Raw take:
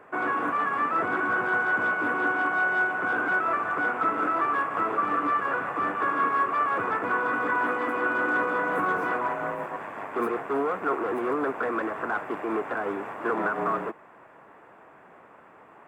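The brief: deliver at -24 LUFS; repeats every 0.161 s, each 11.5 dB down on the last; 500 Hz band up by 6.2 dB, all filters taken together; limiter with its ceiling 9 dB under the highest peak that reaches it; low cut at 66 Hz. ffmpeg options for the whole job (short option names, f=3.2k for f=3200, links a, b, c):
-af "highpass=66,equalizer=f=500:t=o:g=7.5,alimiter=limit=-20dB:level=0:latency=1,aecho=1:1:161|322|483:0.266|0.0718|0.0194,volume=3.5dB"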